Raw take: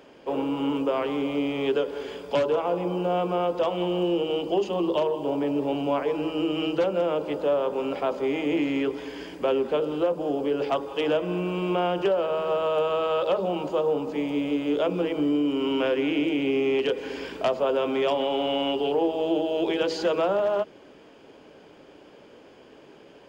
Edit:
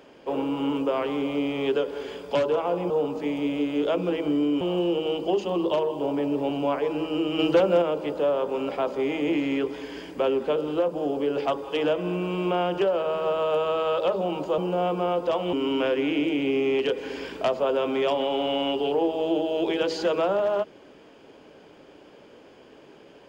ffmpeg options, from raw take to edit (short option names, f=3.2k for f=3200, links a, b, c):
-filter_complex "[0:a]asplit=7[a][b][c][d][e][f][g];[a]atrim=end=2.902[h];[b]atrim=start=13.818:end=15.532[i];[c]atrim=start=3.848:end=6.632[j];[d]atrim=start=6.628:end=7.062,asetpts=PTS-STARTPTS,volume=4.5dB[k];[e]atrim=start=7.058:end=13.822[l];[f]atrim=start=2.898:end=3.852[m];[g]atrim=start=15.528[n];[h][i]acrossfade=d=0.004:c1=hsin:c2=hsin[o];[o][j]acrossfade=d=0.004:c1=hsin:c2=hsin[p];[p][k]acrossfade=d=0.004:c1=hsin:c2=hsin[q];[q][l]acrossfade=d=0.004:c1=hsin:c2=hsin[r];[r][m]acrossfade=d=0.004:c1=hsin:c2=hsin[s];[s][n]acrossfade=d=0.004:c1=hsin:c2=hsin"